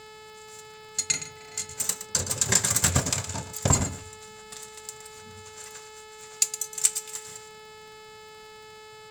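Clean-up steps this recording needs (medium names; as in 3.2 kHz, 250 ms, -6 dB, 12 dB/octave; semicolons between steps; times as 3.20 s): de-click; de-hum 432.5 Hz, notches 12; inverse comb 116 ms -12.5 dB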